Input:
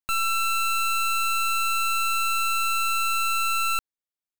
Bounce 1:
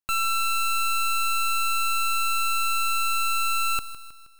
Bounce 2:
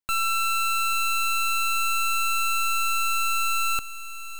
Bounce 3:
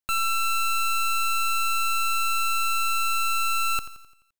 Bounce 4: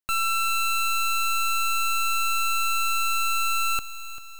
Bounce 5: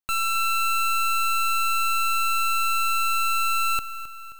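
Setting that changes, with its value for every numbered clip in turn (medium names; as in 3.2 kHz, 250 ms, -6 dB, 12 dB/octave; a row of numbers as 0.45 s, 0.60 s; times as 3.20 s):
bit-crushed delay, time: 158 ms, 837 ms, 86 ms, 393 ms, 265 ms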